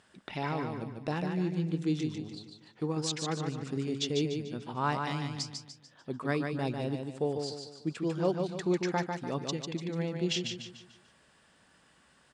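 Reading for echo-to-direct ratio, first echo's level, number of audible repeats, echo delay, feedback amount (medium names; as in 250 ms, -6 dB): -4.0 dB, -5.0 dB, 4, 147 ms, 41%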